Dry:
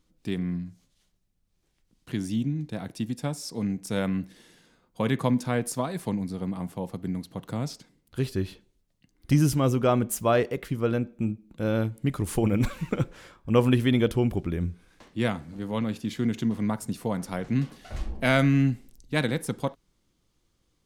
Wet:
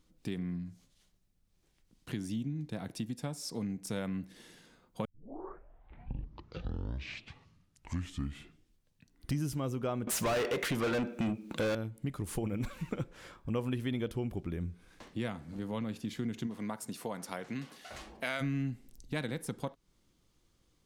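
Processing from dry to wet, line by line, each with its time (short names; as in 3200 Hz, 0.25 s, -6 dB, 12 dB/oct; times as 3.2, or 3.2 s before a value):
5.05 tape start 4.36 s
10.07–11.75 overdrive pedal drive 32 dB, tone 5600 Hz, clips at -11 dBFS
16.46–18.4 HPF 340 Hz -> 930 Hz 6 dB/oct
whole clip: compressor 2.5:1, threshold -37 dBFS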